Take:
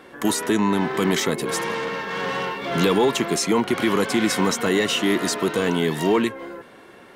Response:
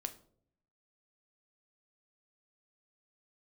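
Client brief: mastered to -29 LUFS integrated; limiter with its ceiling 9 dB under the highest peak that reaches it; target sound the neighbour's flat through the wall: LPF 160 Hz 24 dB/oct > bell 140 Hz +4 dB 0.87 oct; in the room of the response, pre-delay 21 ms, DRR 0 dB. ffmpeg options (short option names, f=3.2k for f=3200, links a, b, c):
-filter_complex "[0:a]alimiter=limit=-18dB:level=0:latency=1,asplit=2[a][b];[1:a]atrim=start_sample=2205,adelay=21[c];[b][c]afir=irnorm=-1:irlink=0,volume=1.5dB[d];[a][d]amix=inputs=2:normalize=0,lowpass=f=160:w=0.5412,lowpass=f=160:w=1.3066,equalizer=f=140:t=o:w=0.87:g=4,volume=7dB"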